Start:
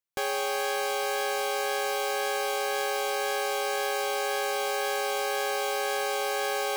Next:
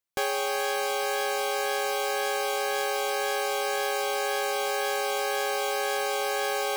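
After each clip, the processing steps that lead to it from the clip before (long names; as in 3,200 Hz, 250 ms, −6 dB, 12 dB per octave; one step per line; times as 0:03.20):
reverb reduction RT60 0.52 s
level +2.5 dB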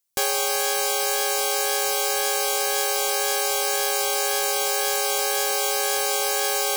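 bass and treble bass +1 dB, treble +12 dB
level +1.5 dB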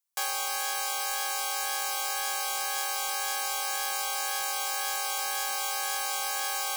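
four-pole ladder high-pass 730 Hz, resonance 35%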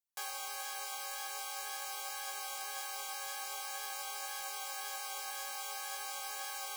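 flanger 0.46 Hz, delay 8.1 ms, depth 8.4 ms, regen +56%
level −6.5 dB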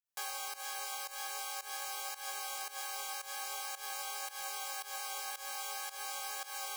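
fake sidechain pumping 112 BPM, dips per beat 1, −17 dB, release 168 ms
level +1 dB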